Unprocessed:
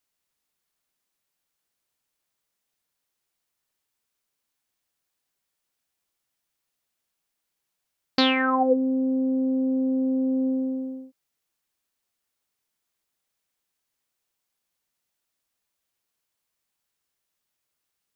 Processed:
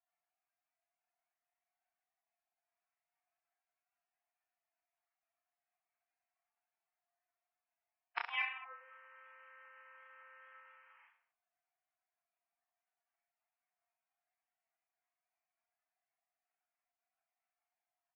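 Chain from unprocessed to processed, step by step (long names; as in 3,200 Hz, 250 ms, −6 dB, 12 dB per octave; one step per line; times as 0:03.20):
Butterworth high-pass 790 Hz 96 dB per octave
gate on every frequency bin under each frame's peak −20 dB weak
Butterworth low-pass 2,500 Hz 48 dB per octave
in parallel at +1 dB: downward compressor 8 to 1, threshold −59 dBFS, peak gain reduction 15.5 dB
on the sum: gate with flip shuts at −39 dBFS, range −26 dB
soft clipping −39.5 dBFS, distortion −13 dB
reverse bouncing-ball delay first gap 30 ms, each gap 1.2×, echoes 5
level +17 dB
MP3 16 kbit/s 12,000 Hz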